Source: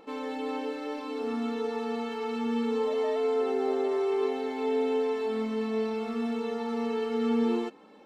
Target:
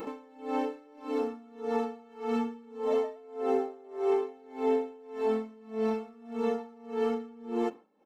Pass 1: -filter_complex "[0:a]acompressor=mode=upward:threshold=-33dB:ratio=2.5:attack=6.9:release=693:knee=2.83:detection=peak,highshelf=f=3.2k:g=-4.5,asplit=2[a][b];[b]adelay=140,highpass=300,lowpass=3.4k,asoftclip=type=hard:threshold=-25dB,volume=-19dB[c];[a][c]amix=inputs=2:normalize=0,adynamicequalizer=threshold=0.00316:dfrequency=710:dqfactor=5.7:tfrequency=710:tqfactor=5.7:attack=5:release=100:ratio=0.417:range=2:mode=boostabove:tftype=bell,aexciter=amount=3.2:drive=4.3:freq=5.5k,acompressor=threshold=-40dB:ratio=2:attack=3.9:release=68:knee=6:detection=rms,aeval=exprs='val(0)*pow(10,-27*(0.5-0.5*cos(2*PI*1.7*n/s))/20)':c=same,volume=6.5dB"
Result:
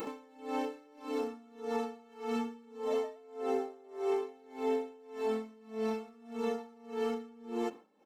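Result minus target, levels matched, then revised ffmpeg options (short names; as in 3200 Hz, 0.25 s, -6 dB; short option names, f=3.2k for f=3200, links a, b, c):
8000 Hz band +7.5 dB; compressor: peak gain reduction +5 dB
-filter_complex "[0:a]acompressor=mode=upward:threshold=-33dB:ratio=2.5:attack=6.9:release=693:knee=2.83:detection=peak,highshelf=f=3.2k:g=-14,asplit=2[a][b];[b]adelay=140,highpass=300,lowpass=3.4k,asoftclip=type=hard:threshold=-25dB,volume=-19dB[c];[a][c]amix=inputs=2:normalize=0,adynamicequalizer=threshold=0.00316:dfrequency=710:dqfactor=5.7:tfrequency=710:tqfactor=5.7:attack=5:release=100:ratio=0.417:range=2:mode=boostabove:tftype=bell,aexciter=amount=3.2:drive=4.3:freq=5.5k,acompressor=threshold=-30dB:ratio=2:attack=3.9:release=68:knee=6:detection=rms,aeval=exprs='val(0)*pow(10,-27*(0.5-0.5*cos(2*PI*1.7*n/s))/20)':c=same,volume=6.5dB"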